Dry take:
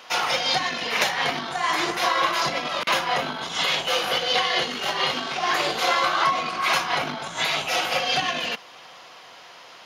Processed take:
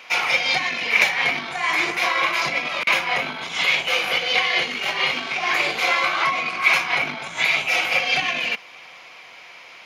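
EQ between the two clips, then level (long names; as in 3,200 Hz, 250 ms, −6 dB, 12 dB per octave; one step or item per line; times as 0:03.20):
parametric band 2,300 Hz +15 dB 0.35 octaves
−2.0 dB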